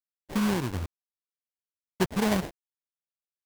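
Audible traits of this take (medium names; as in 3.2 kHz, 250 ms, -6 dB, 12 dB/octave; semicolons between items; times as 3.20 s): a quantiser's noise floor 6-bit, dither none; phasing stages 8, 1.5 Hz, lowest notch 740–1600 Hz; aliases and images of a low sample rate 1.3 kHz, jitter 20%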